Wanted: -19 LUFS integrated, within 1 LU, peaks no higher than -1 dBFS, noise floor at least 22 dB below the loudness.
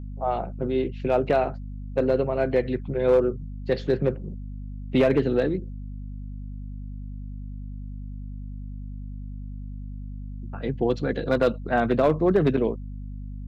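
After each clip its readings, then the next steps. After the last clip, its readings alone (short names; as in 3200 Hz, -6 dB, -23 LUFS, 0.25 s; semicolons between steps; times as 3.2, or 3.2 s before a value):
clipped 0.3%; flat tops at -12.5 dBFS; hum 50 Hz; harmonics up to 250 Hz; hum level -33 dBFS; loudness -24.5 LUFS; peak -12.5 dBFS; loudness target -19.0 LUFS
-> clip repair -12.5 dBFS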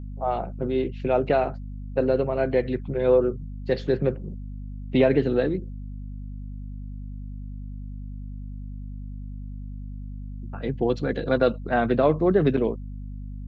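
clipped 0.0%; hum 50 Hz; harmonics up to 200 Hz; hum level -33 dBFS
-> de-hum 50 Hz, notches 4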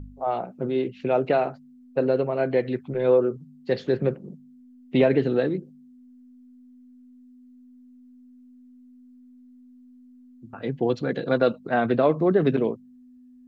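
hum none; loudness -24.5 LUFS; peak -7.0 dBFS; loudness target -19.0 LUFS
-> gain +5.5 dB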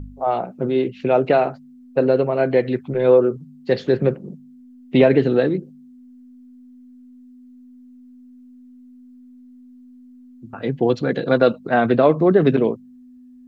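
loudness -19.0 LUFS; peak -1.5 dBFS; noise floor -45 dBFS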